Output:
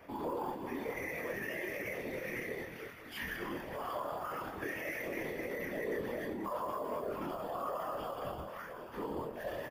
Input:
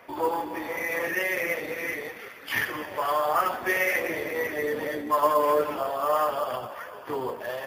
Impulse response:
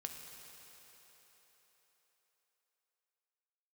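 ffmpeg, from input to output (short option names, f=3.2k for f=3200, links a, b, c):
-filter_complex "[0:a]asplit=2[a][b];[b]acompressor=threshold=-37dB:ratio=6,volume=-1dB[c];[a][c]amix=inputs=2:normalize=0,alimiter=limit=-20dB:level=0:latency=1:release=17,atempo=0.79,acrossover=split=300[d][e];[d]aeval=exprs='0.0355*sin(PI/2*2.51*val(0)/0.0355)':c=same[f];[f][e]amix=inputs=2:normalize=0,afftfilt=real='hypot(re,im)*cos(2*PI*random(0))':imag='hypot(re,im)*sin(2*PI*random(1))':win_size=512:overlap=0.75,asplit=2[g][h];[h]adelay=25,volume=-7dB[i];[g][i]amix=inputs=2:normalize=0,volume=-6.5dB"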